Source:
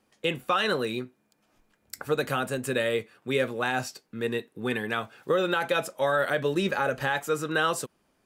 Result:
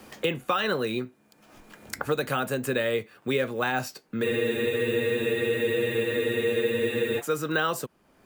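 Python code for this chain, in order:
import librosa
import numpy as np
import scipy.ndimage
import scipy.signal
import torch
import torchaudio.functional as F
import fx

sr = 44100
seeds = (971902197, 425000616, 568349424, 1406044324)

y = np.repeat(x[::2], 2)[:len(x)]
y = fx.spec_freeze(y, sr, seeds[0], at_s=4.25, hold_s=2.94)
y = fx.band_squash(y, sr, depth_pct=70)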